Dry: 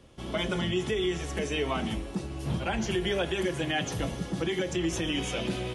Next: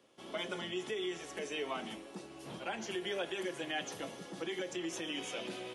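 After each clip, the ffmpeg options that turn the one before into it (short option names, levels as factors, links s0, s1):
-af "highpass=310,volume=0.422"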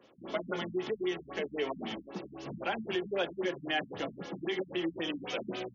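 -af "afftfilt=real='re*lt(b*sr/1024,240*pow(7200/240,0.5+0.5*sin(2*PI*3.8*pts/sr)))':imag='im*lt(b*sr/1024,240*pow(7200/240,0.5+0.5*sin(2*PI*3.8*pts/sr)))':win_size=1024:overlap=0.75,volume=2"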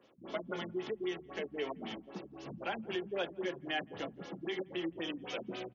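-filter_complex "[0:a]asplit=2[s0][s1];[s1]adelay=170,lowpass=f=1300:p=1,volume=0.0708,asplit=2[s2][s3];[s3]adelay=170,lowpass=f=1300:p=1,volume=0.28[s4];[s0][s2][s4]amix=inputs=3:normalize=0,volume=0.631"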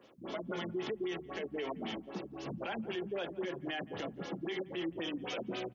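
-af "alimiter=level_in=3.35:limit=0.0631:level=0:latency=1:release=31,volume=0.299,volume=1.68"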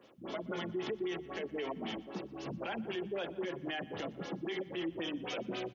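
-af "aecho=1:1:121|242|363|484:0.0891|0.0437|0.0214|0.0105"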